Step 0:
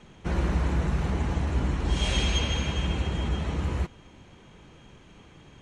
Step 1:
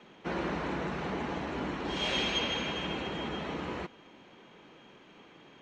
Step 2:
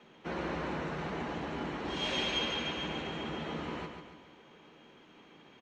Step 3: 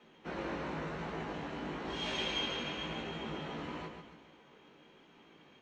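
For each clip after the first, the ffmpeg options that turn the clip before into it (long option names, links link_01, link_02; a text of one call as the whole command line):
ffmpeg -i in.wav -filter_complex "[0:a]acrossover=split=200 5400:gain=0.0631 1 0.0708[link_01][link_02][link_03];[link_01][link_02][link_03]amix=inputs=3:normalize=0" out.wav
ffmpeg -i in.wav -filter_complex "[0:a]asplit=2[link_01][link_02];[link_02]adelay=13,volume=-12dB[link_03];[link_01][link_03]amix=inputs=2:normalize=0,aecho=1:1:141|282|423|564|705|846:0.447|0.21|0.0987|0.0464|0.0218|0.0102,volume=-3.5dB" out.wav
ffmpeg -i in.wav -af "flanger=delay=17.5:depth=3.2:speed=0.97" out.wav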